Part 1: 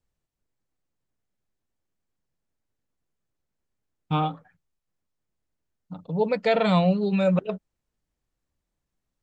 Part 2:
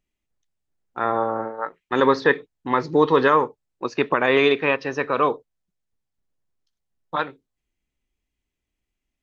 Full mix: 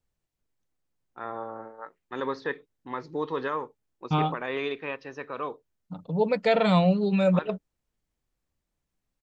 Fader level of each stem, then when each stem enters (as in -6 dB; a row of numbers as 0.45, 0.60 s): -0.5, -13.5 dB; 0.00, 0.20 s